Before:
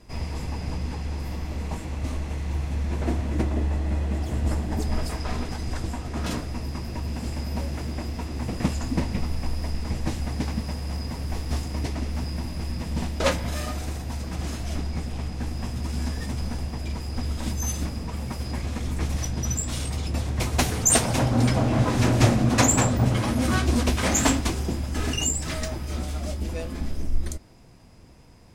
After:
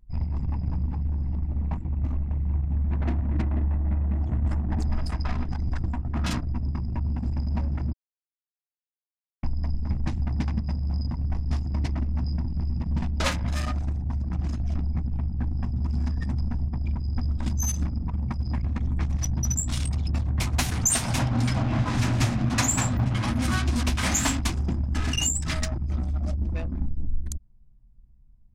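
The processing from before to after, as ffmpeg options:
ffmpeg -i in.wav -filter_complex "[0:a]asplit=3[link_01][link_02][link_03];[link_01]atrim=end=7.93,asetpts=PTS-STARTPTS,afade=type=out:start_time=7.926:duration=0.004:curve=hsin[link_04];[link_02]atrim=start=7.93:end=9.43,asetpts=PTS-STARTPTS,volume=0[link_05];[link_03]atrim=start=9.43,asetpts=PTS-STARTPTS,afade=type=in:duration=0.004:curve=hsin[link_06];[link_04][link_05][link_06]concat=n=3:v=0:a=1,anlmdn=25.1,equalizer=frequency=460:width=1.4:gain=-13,acompressor=threshold=-28dB:ratio=3,volume=5.5dB" out.wav

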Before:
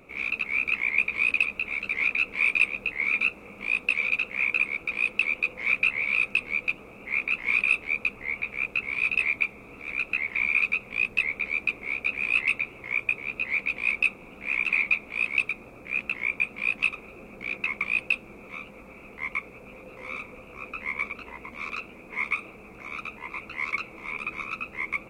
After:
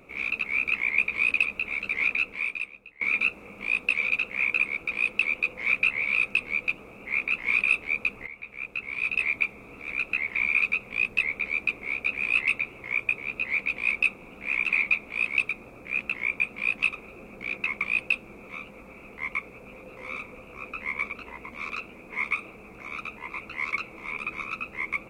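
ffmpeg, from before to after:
ffmpeg -i in.wav -filter_complex "[0:a]asplit=3[link_01][link_02][link_03];[link_01]atrim=end=3.01,asetpts=PTS-STARTPTS,afade=type=out:start_time=2.15:duration=0.86:curve=qua:silence=0.0944061[link_04];[link_02]atrim=start=3.01:end=8.27,asetpts=PTS-STARTPTS,afade=type=in:duration=0.004:curve=hsin:silence=0.0944061,afade=type=out:start_time=5.256:duration=0.004:curve=hsin:silence=0.223872[link_05];[link_03]atrim=start=8.27,asetpts=PTS-STARTPTS,afade=type=in:duration=1.15:silence=0.223872[link_06];[link_04][link_05][link_06]concat=n=3:v=0:a=1" out.wav

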